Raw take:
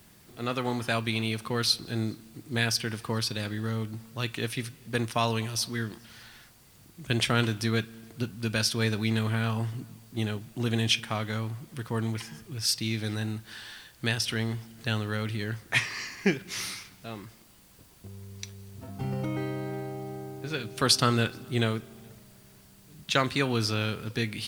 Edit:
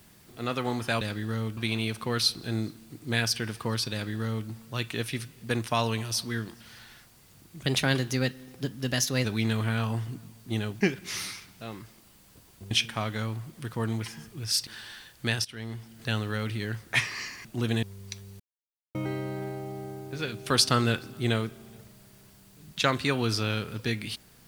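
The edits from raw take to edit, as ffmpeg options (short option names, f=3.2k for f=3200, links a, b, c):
-filter_complex "[0:a]asplit=13[a][b][c][d][e][f][g][h][i][j][k][l][m];[a]atrim=end=1.012[n];[b]atrim=start=3.358:end=3.922[o];[c]atrim=start=1.008:end=7.104[p];[d]atrim=start=7.1:end=8.91,asetpts=PTS-STARTPTS,asetrate=50274,aresample=44100,atrim=end_sample=70018,asetpts=PTS-STARTPTS[q];[e]atrim=start=8.906:end=10.472[r];[f]atrim=start=16.238:end=18.142[s];[g]atrim=start=10.848:end=12.812[t];[h]atrim=start=13.458:end=14.24,asetpts=PTS-STARTPTS,afade=t=out:st=0.778:d=0.004:c=hsin:silence=0.11885[u];[i]atrim=start=14.24:end=16.242,asetpts=PTS-STARTPTS,afade=t=in:d=0.58:silence=0.11885[v];[j]atrim=start=10.468:end=10.852[w];[k]atrim=start=18.138:end=18.71,asetpts=PTS-STARTPTS,afade=t=out:st=0.568:d=0.004:c=hsin[x];[l]atrim=start=18.71:end=19.26,asetpts=PTS-STARTPTS,volume=0[y];[m]atrim=start=19.26,asetpts=PTS-STARTPTS,afade=t=in:d=0.004:c=hsin[z];[n][o]acrossfade=d=0.004:c1=hsin:c2=hsin[aa];[aa][p]acrossfade=d=0.004:c1=hsin:c2=hsin[ab];[ab][q]acrossfade=d=0.004:c1=hsin:c2=hsin[ac];[ac][r]acrossfade=d=0.004:c1=hsin:c2=hsin[ad];[ad][s]acrossfade=d=0.004:c1=hsin:c2=hsin[ae];[ae][t]acrossfade=d=0.004:c1=hsin:c2=hsin[af];[u][v]concat=n=2:v=0:a=1[ag];[af][ag]acrossfade=d=0.004:c1=hsin:c2=hsin[ah];[ah][w]acrossfade=d=0.004:c1=hsin:c2=hsin[ai];[x][y][z]concat=n=3:v=0:a=1[aj];[ai][aj]acrossfade=d=0.004:c1=hsin:c2=hsin"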